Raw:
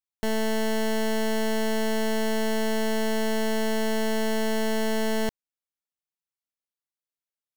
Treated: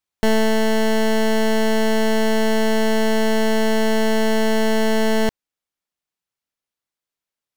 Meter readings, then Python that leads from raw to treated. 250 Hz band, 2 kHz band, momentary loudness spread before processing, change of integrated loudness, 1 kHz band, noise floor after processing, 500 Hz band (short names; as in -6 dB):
+8.0 dB, +7.5 dB, 0 LU, +7.5 dB, +8.0 dB, under -85 dBFS, +8.0 dB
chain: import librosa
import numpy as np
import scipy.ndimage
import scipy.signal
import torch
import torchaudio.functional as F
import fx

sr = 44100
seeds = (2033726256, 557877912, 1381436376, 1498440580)

y = fx.high_shelf(x, sr, hz=7300.0, db=-6.5)
y = fx.rider(y, sr, range_db=10, speed_s=0.5)
y = y * librosa.db_to_amplitude(8.0)